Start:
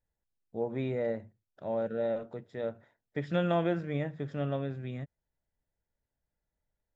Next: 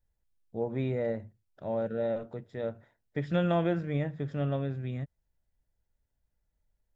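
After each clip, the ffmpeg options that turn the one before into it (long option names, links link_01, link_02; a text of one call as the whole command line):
ffmpeg -i in.wav -af "lowshelf=frequency=96:gain=11.5" out.wav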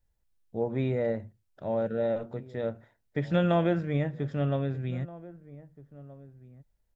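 ffmpeg -i in.wav -filter_complex "[0:a]asplit=2[link_01][link_02];[link_02]adelay=1574,volume=-19dB,highshelf=frequency=4000:gain=-35.4[link_03];[link_01][link_03]amix=inputs=2:normalize=0,volume=2.5dB" out.wav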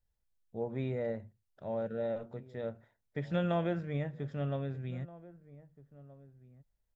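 ffmpeg -i in.wav -af "equalizer=frequency=310:width=6.2:gain=-4.5,volume=-6.5dB" out.wav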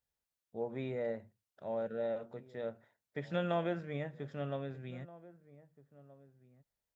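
ffmpeg -i in.wav -af "highpass=frequency=280:poles=1" out.wav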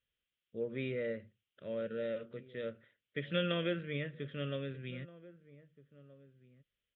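ffmpeg -i in.wav -af "firequalizer=gain_entry='entry(540,0);entry(780,-24);entry(1200,-1);entry(3200,12);entry(5000,-26)':delay=0.05:min_phase=1,volume=1dB" out.wav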